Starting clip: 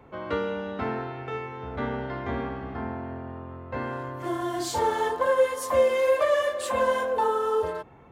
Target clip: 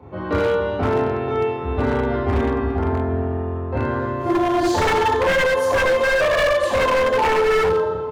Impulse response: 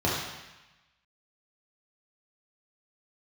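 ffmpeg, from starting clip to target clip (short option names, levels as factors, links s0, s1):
-filter_complex "[0:a]asplit=2[s0][s1];[s1]adelay=278,lowpass=f=2400:p=1,volume=0.266,asplit=2[s2][s3];[s3]adelay=278,lowpass=f=2400:p=1,volume=0.45,asplit=2[s4][s5];[s5]adelay=278,lowpass=f=2400:p=1,volume=0.45,asplit=2[s6][s7];[s7]adelay=278,lowpass=f=2400:p=1,volume=0.45,asplit=2[s8][s9];[s9]adelay=278,lowpass=f=2400:p=1,volume=0.45[s10];[s0][s2][s4][s6][s8][s10]amix=inputs=6:normalize=0[s11];[1:a]atrim=start_sample=2205[s12];[s11][s12]afir=irnorm=-1:irlink=0,aeval=exprs='0.447*(abs(mod(val(0)/0.447+3,4)-2)-1)':c=same,volume=0.531"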